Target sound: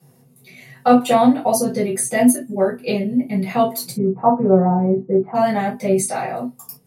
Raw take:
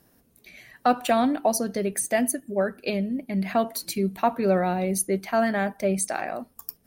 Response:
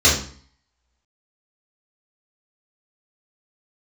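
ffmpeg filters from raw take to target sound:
-filter_complex "[0:a]asplit=3[a][b][c];[a]afade=t=out:st=3.89:d=0.02[d];[b]lowpass=f=1.2k:w=0.5412,lowpass=f=1.2k:w=1.3066,afade=t=in:st=3.89:d=0.02,afade=t=out:st=5.34:d=0.02[e];[c]afade=t=in:st=5.34:d=0.02[f];[d][e][f]amix=inputs=3:normalize=0[g];[1:a]atrim=start_sample=2205,atrim=end_sample=6174,asetrate=79380,aresample=44100[h];[g][h]afir=irnorm=-1:irlink=0,volume=-12dB"

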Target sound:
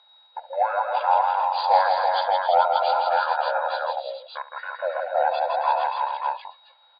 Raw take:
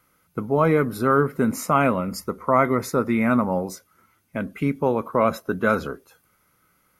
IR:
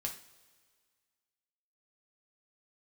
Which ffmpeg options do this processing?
-filter_complex "[0:a]afftfilt=real='re*between(b*sr/4096,740,7300)':imag='im*between(b*sr/4096,740,7300)':win_size=4096:overlap=0.75,acontrast=54,aeval=exprs='val(0)+0.00251*sin(2*PI*5700*n/s)':c=same,asetrate=29433,aresample=44100,atempo=1.49831,asplit=2[a][b];[b]aecho=0:1:70|163|273|333|432|581:0.178|0.596|0.299|0.562|0.376|0.631[c];[a][c]amix=inputs=2:normalize=0,volume=-3.5dB"

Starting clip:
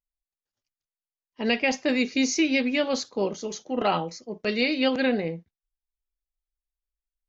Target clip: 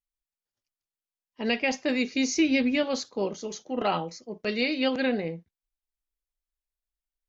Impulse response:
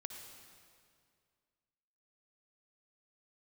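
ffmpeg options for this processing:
-filter_complex "[0:a]asettb=1/sr,asplit=3[a][b][c];[a]atrim=end=2.344[d];[b]atrim=start=2.34:end=2.83,asetpts=PTS-STARTPTS,afade=t=in:d=0.004:c=qsin,afade=t=out:st=0.486:d=0.004:c=qsin,equalizer=f=80:w=0.61:g=14[e];[c]atrim=start=2.826[f];[d][e]acrossfade=d=0.004:c1=hsin:c2=qsin[g];[g][f]acrossfade=d=0.004:c1=qsin:c2=hsin,volume=-2.5dB"

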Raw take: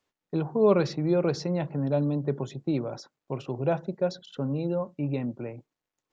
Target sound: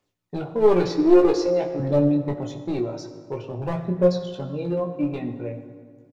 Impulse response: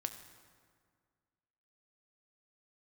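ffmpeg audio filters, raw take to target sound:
-filter_complex "[0:a]asettb=1/sr,asplit=3[a][b][c];[a]atrim=end=0.874[d];[b]atrim=start=0.87:end=1.8,asetpts=PTS-STARTPTS,afade=t=in:d=0.004:c=qsin,afade=t=out:st=0.926:d=0.004:c=qsin,lowshelf=f=250:t=q:w=3:g=-7.5[e];[c]atrim=start=1.796[f];[d][e]acrossfade=d=0.004:c1=hsin:c2=qsin[g];[g][f]acrossfade=d=0.004:c1=qsin:c2=hsin,asettb=1/sr,asplit=3[h][i][j];[h]atrim=end=3.384[k];[i]atrim=start=3.38:end=4.02,asetpts=PTS-STARTPTS,afade=t=in:d=0.004:c=qsin,afade=t=out:st=0.636:d=0.004:c=qsin,lowpass=f=1.9k:p=1[l];[j]atrim=start=4.016[m];[k][l]acrossfade=d=0.004:c1=hsin:c2=qsin[n];[n][m]acrossfade=d=0.004:c1=qsin:c2=hsin,equalizer=f=1.4k:t=o:w=1.2:g=-3,aeval=exprs='clip(val(0),-1,0.075)':c=same,aphaser=in_gain=1:out_gain=1:delay=3.4:decay=0.5:speed=0.5:type=triangular,aecho=1:1:17|28:0.531|0.376[o];[1:a]atrim=start_sample=2205[p];[o][p]afir=irnorm=-1:irlink=0,volume=2dB"

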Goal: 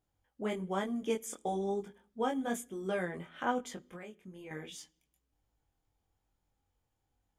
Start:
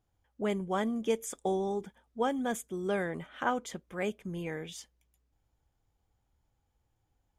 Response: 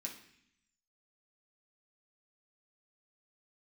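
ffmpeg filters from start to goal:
-filter_complex "[0:a]flanger=delay=20:depth=3.1:speed=1.1,asettb=1/sr,asplit=3[a][b][c];[a]atrim=end=3.964[d];[b]atrim=start=3.96:end=4.51,asetpts=PTS-STARTPTS,afade=t=in:d=0.004:c=qsin,afade=t=out:st=0.546:d=0.004:c=qsin,acompressor=threshold=-47dB:ratio=4[e];[c]atrim=start=4.506[f];[d][e]acrossfade=d=0.004:c1=hsin:c2=qsin[g];[g][f]acrossfade=d=0.004:c1=qsin:c2=hsin,asplit=2[h][i];[i]bass=f=250:g=5,treble=f=4k:g=0[j];[1:a]atrim=start_sample=2205,asetrate=52920,aresample=44100[k];[j][k]afir=irnorm=-1:irlink=0,volume=-12.5dB[l];[h][l]amix=inputs=2:normalize=0"

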